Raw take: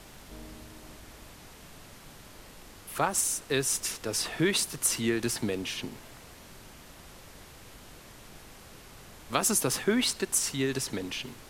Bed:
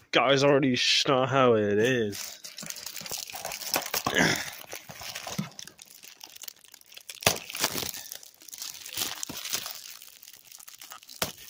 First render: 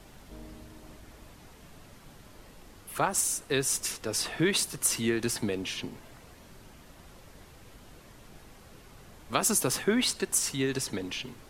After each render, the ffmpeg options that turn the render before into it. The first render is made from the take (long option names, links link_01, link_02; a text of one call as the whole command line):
ffmpeg -i in.wav -af "afftdn=noise_reduction=6:noise_floor=-51" out.wav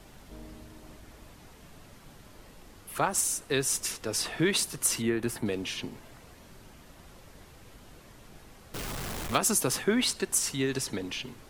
ffmpeg -i in.wav -filter_complex "[0:a]asettb=1/sr,asplit=3[link_01][link_02][link_03];[link_01]atrim=end=5.024[link_04];[link_02]atrim=start=5.02:end=5.46,asetpts=PTS-STARTPTS,afade=type=in:duration=0.004:curve=qsin,afade=type=out:start_time=0.436:duration=0.004:curve=qsin,equalizer=frequency=5400:width=0.75:gain=-11[link_05];[link_03]atrim=start=5.456[link_06];[link_04][link_05]acrossfade=duration=0.004:curve1=hsin:curve2=qsin[link_07];[link_07][link_06]acrossfade=duration=0.004:curve1=qsin:curve2=hsin,asettb=1/sr,asplit=3[link_08][link_09][link_10];[link_08]atrim=end=8.744[link_11];[link_09]atrim=start=8.74:end=9.38,asetpts=PTS-STARTPTS,afade=type=in:duration=0.004:curve=qsin,afade=type=out:start_time=0.636:duration=0.004:curve=qsin,aeval=exprs='val(0)+0.5*0.0282*sgn(val(0))':channel_layout=same[link_12];[link_10]atrim=start=9.376[link_13];[link_11][link_12]acrossfade=duration=0.004:curve1=hsin:curve2=qsin[link_14];[link_14][link_13]acrossfade=duration=0.004:curve1=qsin:curve2=hsin" out.wav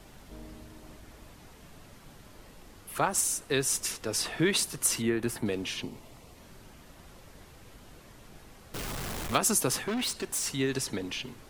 ffmpeg -i in.wav -filter_complex "[0:a]asettb=1/sr,asplit=3[link_01][link_02][link_03];[link_01]atrim=end=5.824[link_04];[link_02]atrim=start=5.82:end=6.37,asetpts=PTS-STARTPTS,afade=type=in:duration=0.004:curve=qsin,afade=type=out:start_time=0.546:duration=0.004:curve=qsin,equalizer=frequency=1600:width_type=o:width=0.41:gain=-11[link_05];[link_03]atrim=start=6.366[link_06];[link_04][link_05]acrossfade=duration=0.004:curve1=hsin:curve2=qsin[link_07];[link_07][link_06]acrossfade=duration=0.004:curve1=qsin:curve2=hsin,asettb=1/sr,asplit=3[link_08][link_09][link_10];[link_08]atrim=end=9.824[link_11];[link_09]atrim=start=9.82:end=10.46,asetpts=PTS-STARTPTS,afade=type=in:duration=0.004:curve=qsin,afade=type=out:start_time=0.636:duration=0.004:curve=qsin,volume=28.5dB,asoftclip=hard,volume=-28.5dB[link_12];[link_10]atrim=start=10.456[link_13];[link_11][link_12]acrossfade=duration=0.004:curve1=hsin:curve2=qsin[link_14];[link_14][link_13]acrossfade=duration=0.004:curve1=qsin:curve2=hsin" out.wav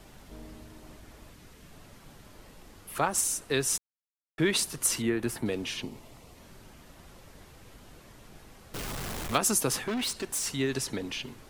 ffmpeg -i in.wav -filter_complex "[0:a]asettb=1/sr,asplit=3[link_01][link_02][link_03];[link_01]atrim=end=1.304[link_04];[link_02]atrim=start=1.3:end=1.71,asetpts=PTS-STARTPTS,afade=type=in:duration=0.004:curve=qsin,afade=type=out:start_time=0.406:duration=0.004:curve=qsin,equalizer=frequency=800:width_type=o:width=0.77:gain=-6[link_05];[link_03]atrim=start=1.706[link_06];[link_04][link_05]acrossfade=duration=0.004:curve1=hsin:curve2=qsin[link_07];[link_07][link_06]acrossfade=duration=0.004:curve1=qsin:curve2=hsin,asplit=3[link_08][link_09][link_10];[link_08]atrim=end=3.78,asetpts=PTS-STARTPTS,afade=type=out:start_time=3.776:duration=0.004:curve=hsin[link_11];[link_09]atrim=start=3.78:end=4.38,asetpts=PTS-STARTPTS,volume=0[link_12];[link_10]atrim=start=4.38,asetpts=PTS-STARTPTS,afade=type=in:duration=0.004:curve=hsin[link_13];[link_11][link_12][link_13]concat=n=3:v=0:a=1" out.wav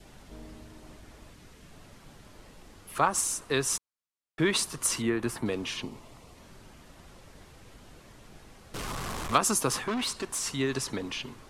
ffmpeg -i in.wav -af "lowpass=11000,adynamicequalizer=threshold=0.002:dfrequency=1100:dqfactor=2.9:tfrequency=1100:tqfactor=2.9:attack=5:release=100:ratio=0.375:range=4:mode=boostabove:tftype=bell" out.wav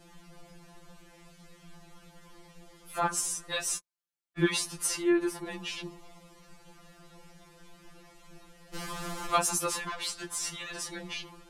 ffmpeg -i in.wav -af "afftfilt=real='re*2.83*eq(mod(b,8),0)':imag='im*2.83*eq(mod(b,8),0)':win_size=2048:overlap=0.75" out.wav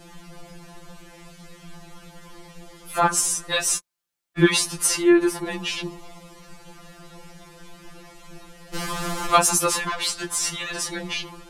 ffmpeg -i in.wav -af "volume=9.5dB" out.wav